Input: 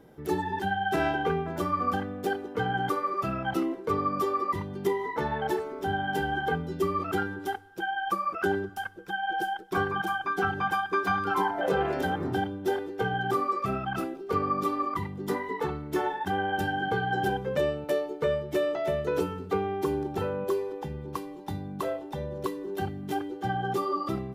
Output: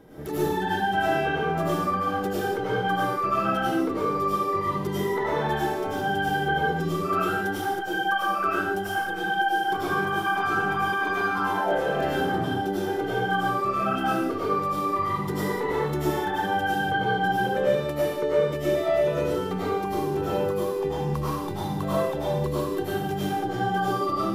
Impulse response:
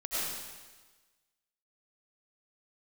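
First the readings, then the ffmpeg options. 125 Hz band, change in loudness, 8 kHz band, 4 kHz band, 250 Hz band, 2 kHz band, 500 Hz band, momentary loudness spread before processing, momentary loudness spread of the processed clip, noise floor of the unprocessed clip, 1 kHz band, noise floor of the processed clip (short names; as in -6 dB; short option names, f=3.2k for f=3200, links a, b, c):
+4.5 dB, +4.0 dB, +6.0 dB, +5.5 dB, +4.0 dB, +5.0 dB, +4.0 dB, 7 LU, 4 LU, -42 dBFS, +4.0 dB, -30 dBFS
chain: -filter_complex "[0:a]acompressor=threshold=-34dB:ratio=6[a];[1:a]atrim=start_sample=2205,afade=t=out:st=0.36:d=0.01,atrim=end_sample=16317[b];[a][b]afir=irnorm=-1:irlink=0,volume=6.5dB"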